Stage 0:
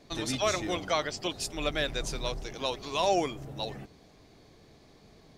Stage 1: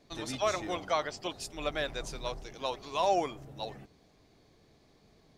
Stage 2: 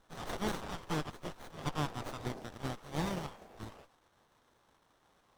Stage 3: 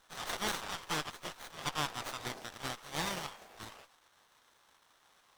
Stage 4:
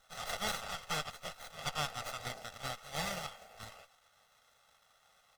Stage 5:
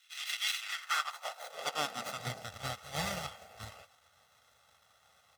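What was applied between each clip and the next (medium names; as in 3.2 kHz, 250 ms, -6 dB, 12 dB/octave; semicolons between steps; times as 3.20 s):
dynamic bell 890 Hz, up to +7 dB, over -41 dBFS, Q 0.73; trim -6.5 dB
spectral gate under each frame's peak -15 dB weak; sliding maximum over 17 samples; trim +6 dB
tilt shelf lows -8 dB, about 760 Hz
comb 1.5 ms, depth 78%; trim -3 dB
high-pass sweep 2.5 kHz -> 78 Hz, 0.59–2.60 s; trim +1.5 dB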